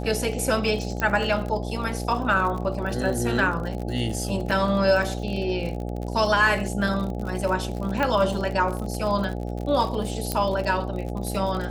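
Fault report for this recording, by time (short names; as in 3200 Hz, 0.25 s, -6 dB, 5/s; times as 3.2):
buzz 60 Hz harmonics 14 -30 dBFS
crackle 52/s -30 dBFS
1 pop -13 dBFS
4.51–4.52 gap 5.1 ms
8.03 pop -11 dBFS
10.32 pop -9 dBFS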